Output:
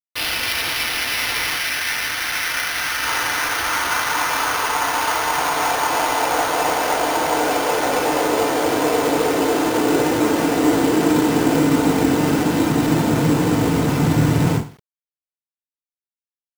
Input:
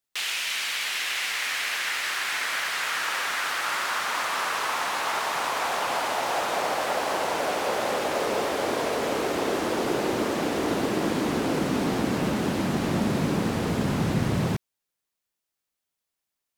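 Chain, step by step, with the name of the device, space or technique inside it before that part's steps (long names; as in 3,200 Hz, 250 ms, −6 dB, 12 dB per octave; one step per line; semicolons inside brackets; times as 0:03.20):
0:01.54–0:03.03: graphic EQ with 15 bands 400 Hz −10 dB, 1,000 Hz −5 dB, 10,000 Hz −9 dB
feedback delay network reverb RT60 0.38 s, low-frequency decay 0.95×, high-frequency decay 0.8×, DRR −8 dB
early 8-bit sampler (sample-rate reduction 7,700 Hz, jitter 0%; bit reduction 8 bits)
level −1.5 dB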